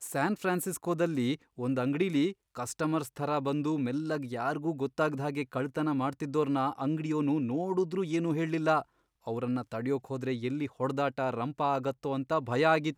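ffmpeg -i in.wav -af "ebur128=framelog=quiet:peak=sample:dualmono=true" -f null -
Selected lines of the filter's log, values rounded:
Integrated loudness:
  I:         -28.3 LUFS
  Threshold: -38.3 LUFS
Loudness range:
  LRA:         1.7 LU
  Threshold: -48.6 LUFS
  LRA low:   -29.4 LUFS
  LRA high:  -27.6 LUFS
Sample peak:
  Peak:      -13.0 dBFS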